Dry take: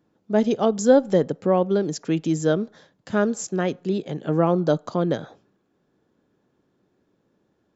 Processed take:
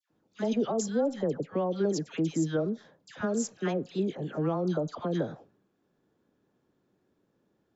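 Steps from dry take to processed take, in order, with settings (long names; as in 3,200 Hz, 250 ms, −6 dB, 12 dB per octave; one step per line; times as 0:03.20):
brickwall limiter −14 dBFS, peak gain reduction 9.5 dB
all-pass dispersion lows, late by 104 ms, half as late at 1,400 Hz
level −5 dB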